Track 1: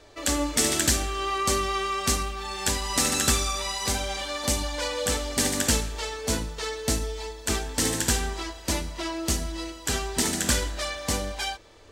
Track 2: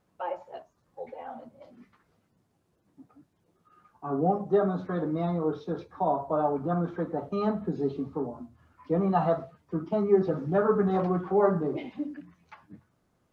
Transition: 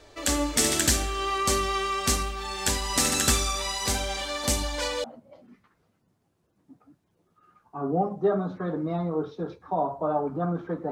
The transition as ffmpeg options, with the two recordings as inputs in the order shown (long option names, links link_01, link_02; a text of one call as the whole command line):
ffmpeg -i cue0.wav -i cue1.wav -filter_complex "[0:a]apad=whole_dur=10.91,atrim=end=10.91,atrim=end=5.042[link_01];[1:a]atrim=start=1.328:end=7.2[link_02];[link_01][link_02]acrossfade=duration=0.004:curve1=hsin:curve2=hsin" out.wav